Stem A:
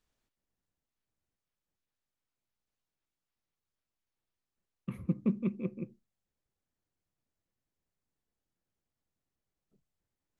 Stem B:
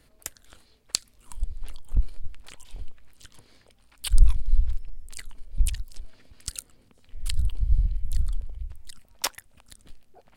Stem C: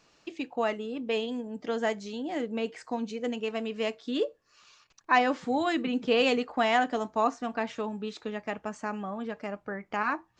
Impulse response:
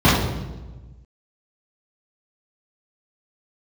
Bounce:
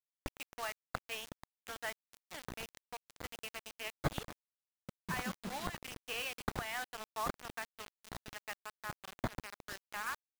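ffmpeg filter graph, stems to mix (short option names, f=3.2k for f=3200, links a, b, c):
-filter_complex "[0:a]volume=-19dB[a];[1:a]highpass=f=1.1k:w=0.5412,highpass=f=1.1k:w=1.3066,dynaudnorm=f=490:g=5:m=7dB,acrusher=samples=16:mix=1:aa=0.000001,volume=-6.5dB[b];[2:a]highpass=1.3k,alimiter=limit=-24dB:level=0:latency=1:release=261,volume=-4dB[c];[a][b][c]amix=inputs=3:normalize=0,bass=f=250:g=8,treble=f=4k:g=-12,acrusher=bits=6:mix=0:aa=0.000001,alimiter=limit=-19.5dB:level=0:latency=1:release=184"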